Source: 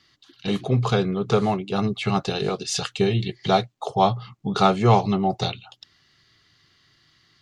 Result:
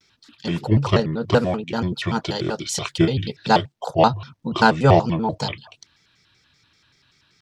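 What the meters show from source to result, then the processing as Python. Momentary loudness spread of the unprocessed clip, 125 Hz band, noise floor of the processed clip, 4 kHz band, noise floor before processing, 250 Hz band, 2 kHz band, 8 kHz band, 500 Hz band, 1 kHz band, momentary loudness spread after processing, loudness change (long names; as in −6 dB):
10 LU, +2.0 dB, −63 dBFS, +1.0 dB, −62 dBFS, +2.0 dB, +7.0 dB, +1.0 dB, +2.0 dB, +1.5 dB, 12 LU, +2.0 dB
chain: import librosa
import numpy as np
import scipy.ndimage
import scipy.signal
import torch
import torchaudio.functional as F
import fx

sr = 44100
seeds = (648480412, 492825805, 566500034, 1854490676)

p1 = fx.level_steps(x, sr, step_db=19)
p2 = x + (p1 * 10.0 ** (1.5 / 20.0))
p3 = fx.vibrato_shape(p2, sr, shape='square', rate_hz=5.2, depth_cents=250.0)
y = p3 * 10.0 ** (-2.0 / 20.0)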